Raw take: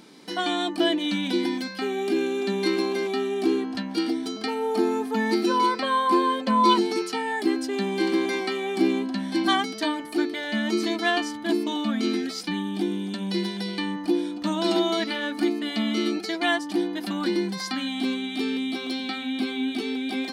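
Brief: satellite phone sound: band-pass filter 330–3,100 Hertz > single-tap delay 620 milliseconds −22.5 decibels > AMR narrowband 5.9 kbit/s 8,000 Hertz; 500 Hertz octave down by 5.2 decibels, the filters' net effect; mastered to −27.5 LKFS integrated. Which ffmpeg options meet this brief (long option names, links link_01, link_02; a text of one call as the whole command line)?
ffmpeg -i in.wav -af "highpass=330,lowpass=3100,equalizer=frequency=500:width_type=o:gain=-5.5,aecho=1:1:620:0.075,volume=3.5dB" -ar 8000 -c:a libopencore_amrnb -b:a 5900 out.amr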